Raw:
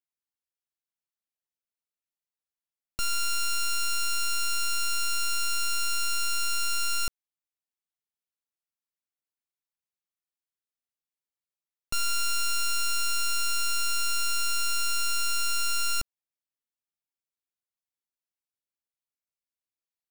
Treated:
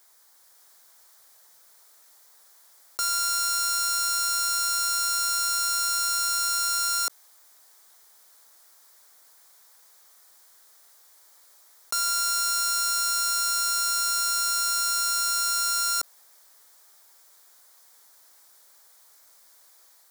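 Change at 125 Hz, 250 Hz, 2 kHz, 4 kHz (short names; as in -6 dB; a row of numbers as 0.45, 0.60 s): under -20 dB, n/a, -2.5 dB, +3.5 dB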